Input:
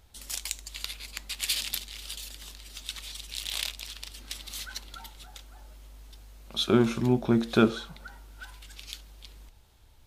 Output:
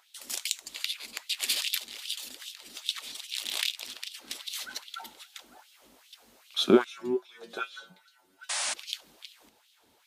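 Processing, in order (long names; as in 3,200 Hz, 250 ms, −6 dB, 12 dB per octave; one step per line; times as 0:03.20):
0:06.84–0:08.52: stiff-string resonator 91 Hz, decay 0.36 s, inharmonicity 0.002
auto-filter high-pass sine 2.5 Hz 220–3,400 Hz
0:08.49–0:08.74: sound drawn into the spectrogram noise 540–10,000 Hz −31 dBFS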